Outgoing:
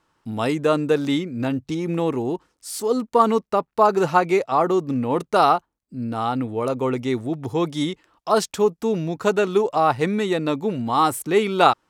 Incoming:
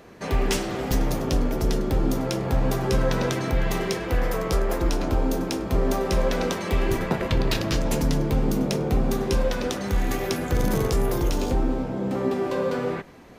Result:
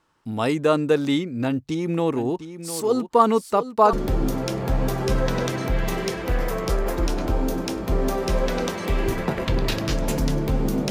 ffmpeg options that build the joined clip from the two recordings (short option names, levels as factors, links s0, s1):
-filter_complex "[0:a]asplit=3[s0][s1][s2];[s0]afade=t=out:st=2.16:d=0.02[s3];[s1]aecho=1:1:705:0.266,afade=t=in:st=2.16:d=0.02,afade=t=out:st=3.93:d=0.02[s4];[s2]afade=t=in:st=3.93:d=0.02[s5];[s3][s4][s5]amix=inputs=3:normalize=0,apad=whole_dur=10.9,atrim=end=10.9,atrim=end=3.932[s6];[1:a]atrim=start=1.758:end=8.73[s7];[s6][s7]acrossfade=d=0.004:c1=hsin:c2=hsin"